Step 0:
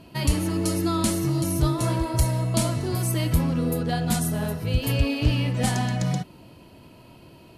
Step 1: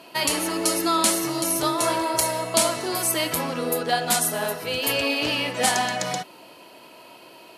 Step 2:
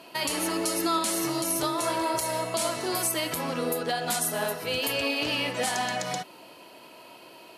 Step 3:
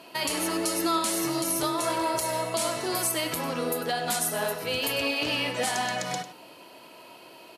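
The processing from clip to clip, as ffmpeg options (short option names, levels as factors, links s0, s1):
-af "highpass=520,volume=2.51"
-af "alimiter=limit=0.188:level=0:latency=1:release=151,volume=0.794"
-af "aecho=1:1:99:0.211"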